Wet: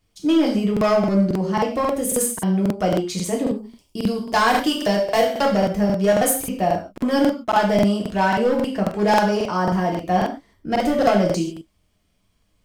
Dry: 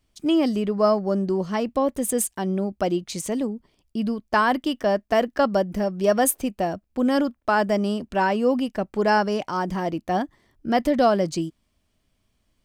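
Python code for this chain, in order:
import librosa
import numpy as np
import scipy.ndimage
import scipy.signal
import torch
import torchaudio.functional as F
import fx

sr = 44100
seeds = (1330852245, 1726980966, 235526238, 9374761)

y = fx.high_shelf(x, sr, hz=fx.line((3.5, 4100.0), (5.41, 2700.0)), db=10.5, at=(3.5, 5.41), fade=0.02)
y = np.clip(y, -10.0 ** (-16.0 / 20.0), 10.0 ** (-16.0 / 20.0))
y = fx.rev_gated(y, sr, seeds[0], gate_ms=180, shape='falling', drr_db=-1.5)
y = fx.buffer_crackle(y, sr, first_s=0.72, period_s=0.27, block=2048, kind='repeat')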